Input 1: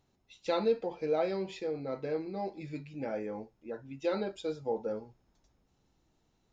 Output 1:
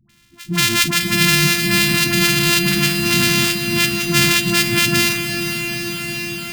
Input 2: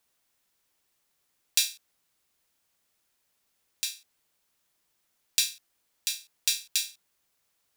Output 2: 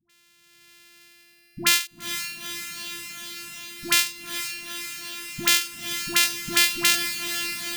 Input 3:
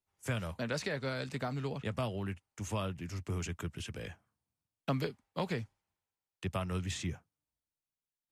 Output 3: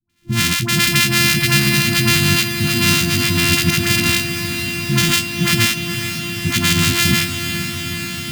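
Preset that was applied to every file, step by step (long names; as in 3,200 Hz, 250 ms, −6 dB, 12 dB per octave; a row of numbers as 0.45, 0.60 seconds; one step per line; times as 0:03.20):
samples sorted by size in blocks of 128 samples
automatic gain control gain up to 8.5 dB
low shelf with overshoot 120 Hz −13.5 dB, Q 1.5
reversed playback
downward compressor 6 to 1, threshold −31 dBFS
reversed playback
Chebyshev band-stop filter 110–2,500 Hz, order 2
parametric band 510 Hz +14 dB 1.4 octaves
all-pass dispersion highs, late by 96 ms, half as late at 620 Hz
on a send: feedback delay with all-pass diffusion 456 ms, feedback 79%, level −9 dB
on the sum: normalise the peak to −2 dBFS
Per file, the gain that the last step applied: +27.0, +20.5, +27.0 decibels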